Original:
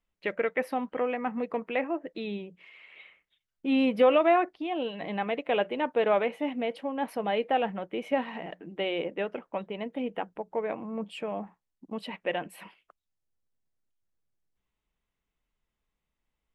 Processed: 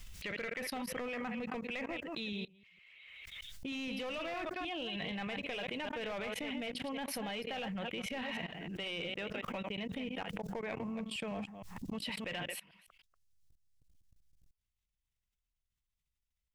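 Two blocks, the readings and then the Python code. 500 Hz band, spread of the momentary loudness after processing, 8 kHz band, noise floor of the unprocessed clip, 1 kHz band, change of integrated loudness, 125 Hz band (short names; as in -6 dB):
-14.0 dB, 5 LU, n/a, -85 dBFS, -13.0 dB, -10.0 dB, -1.0 dB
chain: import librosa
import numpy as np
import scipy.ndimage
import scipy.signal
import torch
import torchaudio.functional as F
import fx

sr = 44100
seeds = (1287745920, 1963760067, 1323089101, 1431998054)

p1 = fx.reverse_delay(x, sr, ms=155, wet_db=-8)
p2 = np.clip(10.0 ** (25.5 / 20.0) * p1, -1.0, 1.0) / 10.0 ** (25.5 / 20.0)
p3 = p1 + (p2 * librosa.db_to_amplitude(-8.5))
p4 = fx.curve_eq(p3, sr, hz=(100.0, 310.0, 880.0, 5500.0), db=(0, -18, -17, 4))
p5 = 10.0 ** (-31.0 / 20.0) * np.tanh(p4 / 10.0 ** (-31.0 / 20.0))
p6 = fx.level_steps(p5, sr, step_db=24)
p7 = fx.high_shelf(p6, sr, hz=5500.0, db=-8.0)
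p8 = fx.pre_swell(p7, sr, db_per_s=27.0)
y = p8 * librosa.db_to_amplitude(9.0)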